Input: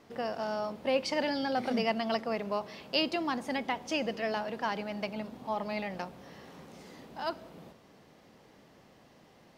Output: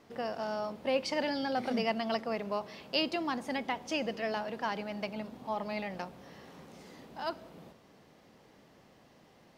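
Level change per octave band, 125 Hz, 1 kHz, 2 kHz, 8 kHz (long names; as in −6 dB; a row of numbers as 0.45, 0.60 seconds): −1.5, −1.5, −1.5, −1.5 decibels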